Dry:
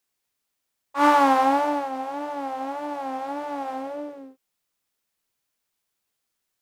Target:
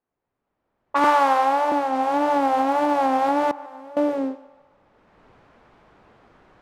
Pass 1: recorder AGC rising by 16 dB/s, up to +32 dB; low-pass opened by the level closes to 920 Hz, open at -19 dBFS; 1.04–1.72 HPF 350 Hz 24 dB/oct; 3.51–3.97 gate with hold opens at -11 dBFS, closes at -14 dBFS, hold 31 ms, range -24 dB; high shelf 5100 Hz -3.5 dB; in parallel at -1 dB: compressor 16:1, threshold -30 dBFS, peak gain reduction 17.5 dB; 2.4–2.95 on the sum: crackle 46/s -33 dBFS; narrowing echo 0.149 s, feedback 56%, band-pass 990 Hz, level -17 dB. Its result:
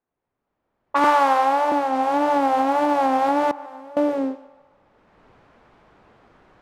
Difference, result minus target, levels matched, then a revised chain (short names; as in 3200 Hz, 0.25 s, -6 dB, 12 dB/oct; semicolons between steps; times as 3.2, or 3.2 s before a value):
compressor: peak gain reduction -7 dB
recorder AGC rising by 16 dB/s, up to +32 dB; low-pass opened by the level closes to 920 Hz, open at -19 dBFS; 1.04–1.72 HPF 350 Hz 24 dB/oct; 3.51–3.97 gate with hold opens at -11 dBFS, closes at -14 dBFS, hold 31 ms, range -24 dB; high shelf 5100 Hz -3.5 dB; in parallel at -1 dB: compressor 16:1, threshold -37.5 dBFS, peak gain reduction 24.5 dB; 2.4–2.95 on the sum: crackle 46/s -33 dBFS; narrowing echo 0.149 s, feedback 56%, band-pass 990 Hz, level -17 dB